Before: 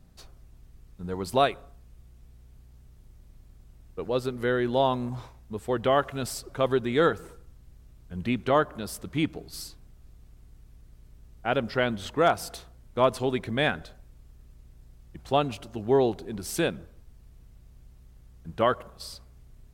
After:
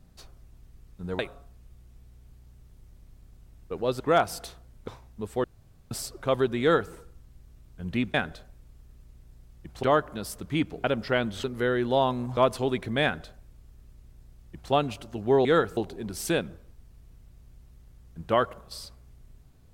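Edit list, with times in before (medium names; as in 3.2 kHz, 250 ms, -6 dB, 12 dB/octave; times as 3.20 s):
1.19–1.46 s: delete
4.27–5.20 s: swap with 12.10–12.98 s
5.76–6.23 s: room tone
6.93–7.25 s: copy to 16.06 s
9.47–11.50 s: delete
13.64–15.33 s: copy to 8.46 s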